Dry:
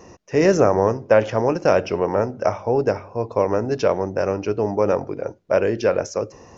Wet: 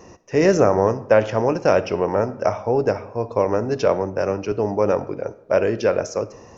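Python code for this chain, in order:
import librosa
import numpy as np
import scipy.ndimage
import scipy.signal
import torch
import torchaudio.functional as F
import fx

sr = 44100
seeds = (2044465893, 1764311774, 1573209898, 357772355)

y = fx.rev_freeverb(x, sr, rt60_s=0.86, hf_ratio=0.6, predelay_ms=10, drr_db=16.5)
y = fx.band_widen(y, sr, depth_pct=40, at=(3.86, 4.52))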